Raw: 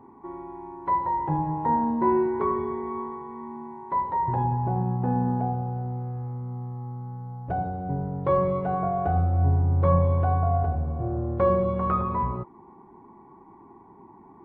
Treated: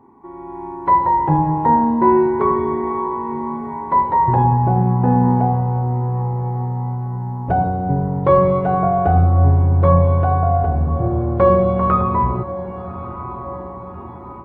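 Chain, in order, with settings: diffused feedback echo 1.175 s, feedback 53%, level -15.5 dB; AGC gain up to 11 dB

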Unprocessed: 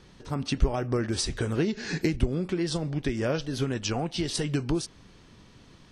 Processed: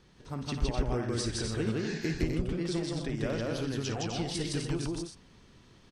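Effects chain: loudspeakers at several distances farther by 19 m -11 dB, 56 m -1 dB, 87 m -6 dB, 99 m -9 dB; gain -7.5 dB

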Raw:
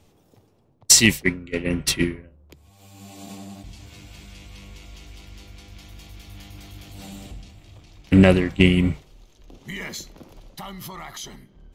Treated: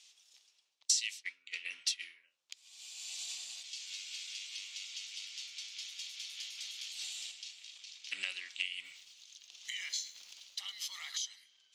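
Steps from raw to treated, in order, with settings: Butterworth band-pass 4400 Hz, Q 1; compressor 3:1, threshold -47 dBFS, peak gain reduction 26 dB; high shelf 3600 Hz +6.5 dB; 8.74–11.12 lo-fi delay 0.108 s, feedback 55%, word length 10-bit, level -15 dB; gain +4.5 dB

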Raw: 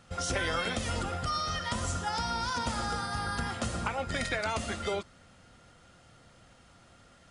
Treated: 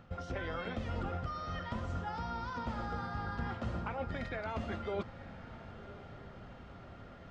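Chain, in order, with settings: high shelf 3800 Hz +7.5 dB; reverse; compressor 6:1, threshold -41 dBFS, peak gain reduction 14.5 dB; reverse; tape spacing loss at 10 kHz 44 dB; diffused feedback echo 1.069 s, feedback 43%, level -15.5 dB; gain +9 dB

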